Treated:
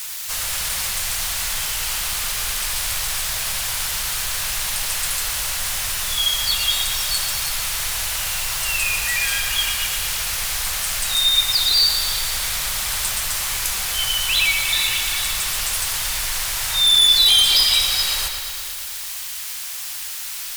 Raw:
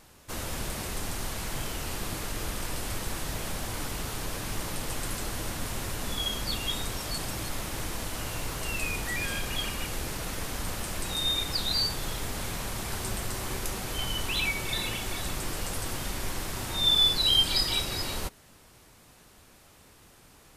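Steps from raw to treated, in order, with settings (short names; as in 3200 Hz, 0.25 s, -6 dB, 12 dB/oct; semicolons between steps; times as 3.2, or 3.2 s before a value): in parallel at -3 dB: requantised 6-bit, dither triangular; on the sum: passive tone stack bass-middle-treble 10-0-10; sine folder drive 8 dB, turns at -9.5 dBFS; low shelf 170 Hz -8.5 dB; on a send: analogue delay 0.116 s, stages 4096, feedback 71%, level -7 dB; on the sum: gain -2 dB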